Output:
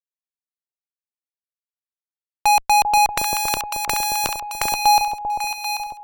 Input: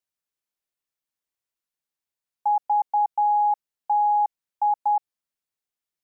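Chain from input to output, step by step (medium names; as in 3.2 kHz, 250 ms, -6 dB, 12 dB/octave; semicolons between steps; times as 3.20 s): fuzz box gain 49 dB, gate -53 dBFS; echo whose repeats swap between lows and highs 394 ms, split 850 Hz, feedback 66%, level -3.5 dB; 3.09–4.74 s: spectrum-flattening compressor 2:1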